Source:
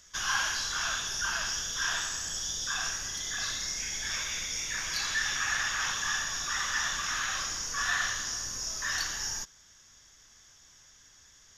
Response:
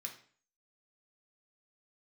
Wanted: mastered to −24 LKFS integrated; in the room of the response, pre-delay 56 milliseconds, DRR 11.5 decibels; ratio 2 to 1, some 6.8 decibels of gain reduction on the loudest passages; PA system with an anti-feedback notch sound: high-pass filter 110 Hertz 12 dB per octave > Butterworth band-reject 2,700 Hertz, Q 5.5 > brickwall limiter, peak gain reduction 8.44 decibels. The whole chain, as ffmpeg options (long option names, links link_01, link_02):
-filter_complex "[0:a]acompressor=threshold=-38dB:ratio=2,asplit=2[link_01][link_02];[1:a]atrim=start_sample=2205,adelay=56[link_03];[link_02][link_03]afir=irnorm=-1:irlink=0,volume=-8.5dB[link_04];[link_01][link_04]amix=inputs=2:normalize=0,highpass=110,asuperstop=centerf=2700:order=8:qfactor=5.5,volume=15dB,alimiter=limit=-17dB:level=0:latency=1"